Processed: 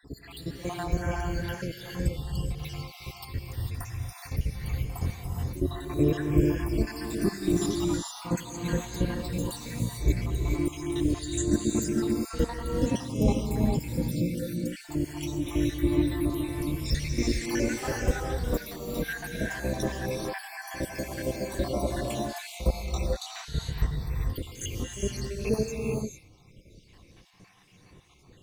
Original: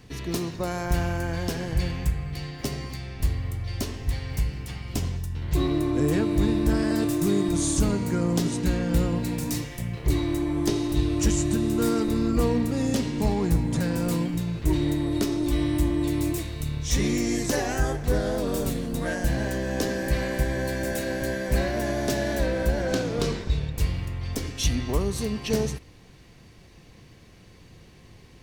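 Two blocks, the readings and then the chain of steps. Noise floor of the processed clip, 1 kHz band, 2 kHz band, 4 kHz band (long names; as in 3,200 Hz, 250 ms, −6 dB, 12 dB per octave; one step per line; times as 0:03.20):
−56 dBFS, −4.0 dB, −4.0 dB, −4.5 dB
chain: time-frequency cells dropped at random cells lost 80%
backwards echo 60 ms −14 dB
reverb whose tail is shaped and stops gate 470 ms rising, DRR 0 dB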